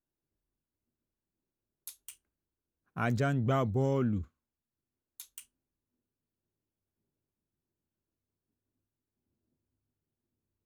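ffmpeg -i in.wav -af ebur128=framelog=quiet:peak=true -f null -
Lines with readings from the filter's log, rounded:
Integrated loudness:
  I:         -30.8 LUFS
  Threshold: -43.9 LUFS
Loudness range:
  LRA:        10.1 LU
  Threshold: -56.3 LUFS
  LRA low:   -43.8 LUFS
  LRA high:  -33.8 LUFS
True peak:
  Peak:      -16.8 dBFS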